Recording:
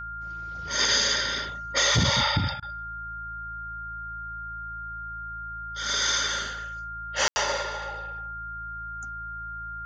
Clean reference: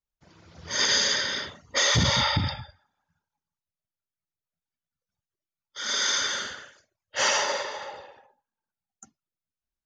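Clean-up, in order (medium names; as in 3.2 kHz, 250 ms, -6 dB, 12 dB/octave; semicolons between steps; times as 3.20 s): de-hum 55.1 Hz, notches 3; band-stop 1.4 kHz, Q 30; room tone fill 7.28–7.36 s; interpolate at 2.60 s, 23 ms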